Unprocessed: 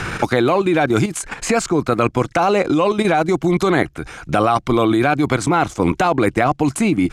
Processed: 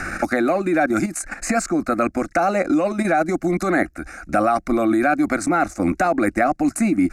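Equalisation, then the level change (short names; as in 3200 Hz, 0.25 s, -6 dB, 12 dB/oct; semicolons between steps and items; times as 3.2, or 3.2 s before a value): fixed phaser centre 650 Hz, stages 8; 0.0 dB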